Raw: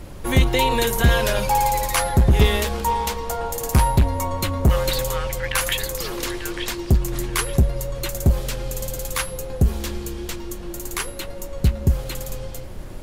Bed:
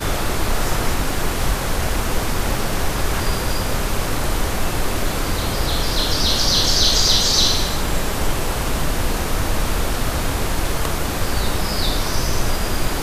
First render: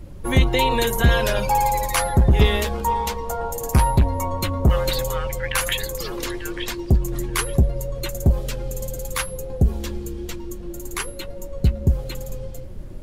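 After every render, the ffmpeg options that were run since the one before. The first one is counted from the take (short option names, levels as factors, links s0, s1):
-af "afftdn=nr=10:nf=-34"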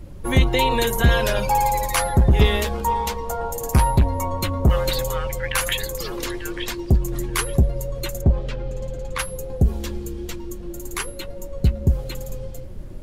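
-filter_complex "[0:a]asplit=3[s0][s1][s2];[s0]afade=t=out:st=8.2:d=0.02[s3];[s1]lowpass=3300,afade=t=in:st=8.2:d=0.02,afade=t=out:st=9.18:d=0.02[s4];[s2]afade=t=in:st=9.18:d=0.02[s5];[s3][s4][s5]amix=inputs=3:normalize=0"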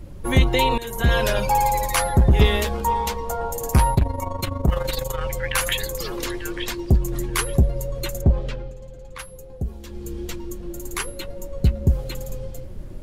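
-filter_complex "[0:a]asettb=1/sr,asplit=3[s0][s1][s2];[s0]atrim=end=3.944[s3];[s1]atrim=start=3.94:end=5.21,asetpts=PTS-STARTPTS,afade=t=in:d=0.004:c=qsin,afade=t=out:st=1.266:d=0.004:c=qsin,tremolo=f=24:d=0.71[s4];[s2]atrim=start=5.206[s5];[s3][s4]acrossfade=d=0.004:c1=hsin:c2=qsin[s6];[s6][s5]acrossfade=d=0.004:c1=qsin:c2=hsin,asplit=4[s7][s8][s9][s10];[s7]atrim=end=0.78,asetpts=PTS-STARTPTS,afade=t=out:st=0.776:d=0.004:c=hsin:silence=0.11885[s11];[s8]atrim=start=0.78:end=8.76,asetpts=PTS-STARTPTS,afade=t=in:d=0.41:silence=0.11885,afade=t=out:st=7.7:d=0.28:silence=0.316228[s12];[s9]atrim=start=8.76:end=9.87,asetpts=PTS-STARTPTS,volume=0.316[s13];[s10]atrim=start=9.87,asetpts=PTS-STARTPTS,afade=t=in:d=0.28:silence=0.316228[s14];[s11][s12][s13][s14]concat=n=4:v=0:a=1"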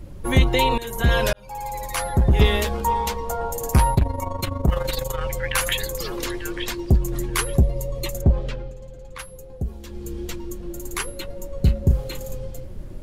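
-filter_complex "[0:a]asettb=1/sr,asplit=3[s0][s1][s2];[s0]atrim=end=7.614[s3];[s1]atrim=start=7.61:end=8.14,asetpts=PTS-STARTPTS,afade=t=in:d=0.004:c=qsin,afade=t=out:st=0.526:d=0.004:c=qsin,asuperstop=centerf=1500:order=4:qfactor=3.7[s4];[s2]atrim=start=8.136[s5];[s3][s4]acrossfade=d=0.004:c1=hsin:c2=qsin[s6];[s6][s5]acrossfade=d=0.004:c1=qsin:c2=hsin,asettb=1/sr,asplit=3[s7][s8][s9];[s7]atrim=end=11.594[s10];[s8]atrim=start=11.59:end=12.34,asetpts=PTS-STARTPTS,afade=t=in:d=0.004:c=qsin,afade=t=out:st=0.746:d=0.004:c=qsin,asplit=2[s11][s12];[s12]adelay=36,volume=0.398[s13];[s11][s13]amix=inputs=2:normalize=0,atrim=end_sample=33075[s14];[s9]atrim=start=12.336[s15];[s10][s14]acrossfade=d=0.004:c1=hsin:c2=qsin[s16];[s16][s15]acrossfade=d=0.004:c1=qsin:c2=hsin,asplit=2[s17][s18];[s17]atrim=end=1.33,asetpts=PTS-STARTPTS,afade=t=out:st=1.326:d=0.004:c=hsin[s19];[s18]atrim=start=1.33,asetpts=PTS-STARTPTS,afade=t=in:d=1.15[s20];[s19][s20]concat=n=2:v=0:a=1"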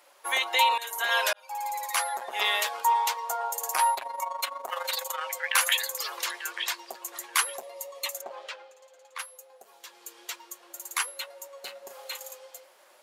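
-af "highpass=f=730:w=0.5412,highpass=f=730:w=1.3066"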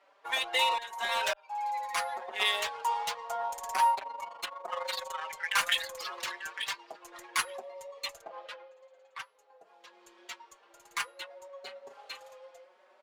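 -filter_complex "[0:a]adynamicsmooth=sensitivity=5:basefreq=2900,asplit=2[s0][s1];[s1]adelay=4.7,afreqshift=0.76[s2];[s0][s2]amix=inputs=2:normalize=1"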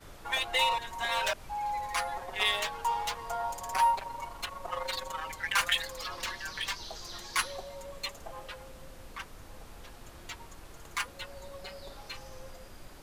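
-filter_complex "[1:a]volume=0.0355[s0];[0:a][s0]amix=inputs=2:normalize=0"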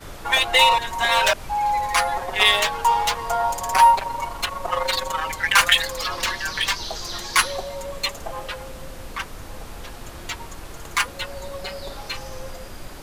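-af "volume=3.98,alimiter=limit=0.794:level=0:latency=1"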